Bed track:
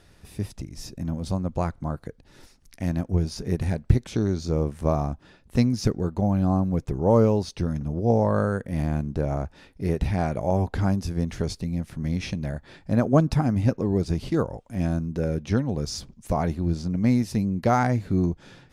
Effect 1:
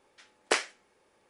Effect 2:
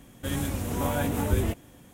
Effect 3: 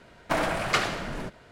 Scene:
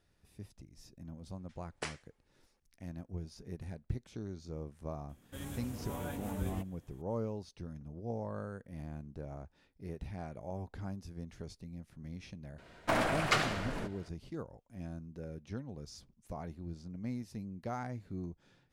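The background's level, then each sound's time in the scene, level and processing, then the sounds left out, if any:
bed track -18.5 dB
1.31 s: add 1 -14 dB
5.09 s: add 2 -14 dB
12.58 s: add 3 -4.5 dB

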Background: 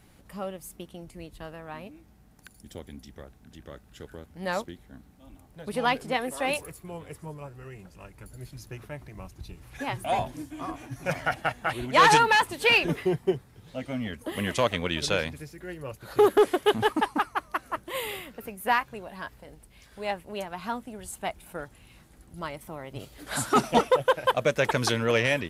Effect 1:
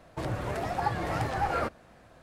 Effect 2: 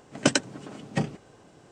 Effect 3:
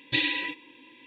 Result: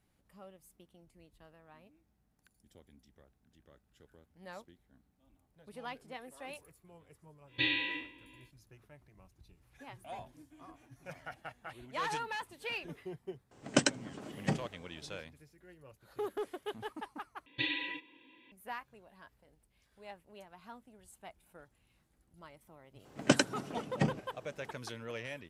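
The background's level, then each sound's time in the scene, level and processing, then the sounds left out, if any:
background -18.5 dB
7.46 s: add 3 -7.5 dB, fades 0.10 s + spectral sustain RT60 0.53 s
13.51 s: add 2 -5.5 dB
17.46 s: replace with 3 -8.5 dB
23.04 s: add 2 -3.5 dB, fades 0.02 s + treble shelf 5.9 kHz -7 dB
not used: 1

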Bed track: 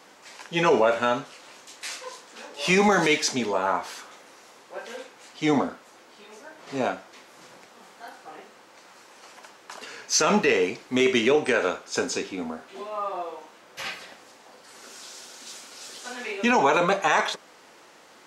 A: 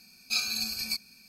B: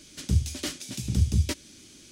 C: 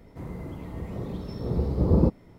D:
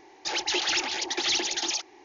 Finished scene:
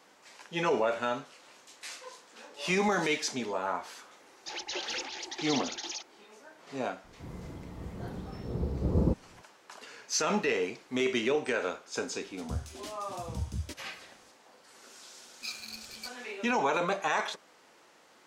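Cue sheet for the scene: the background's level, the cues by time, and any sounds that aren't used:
bed track -8 dB
4.21 s: add D -10 dB
7.04 s: add C -6.5 dB
12.20 s: add B -12.5 dB
15.12 s: add A -9.5 dB + local Wiener filter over 9 samples

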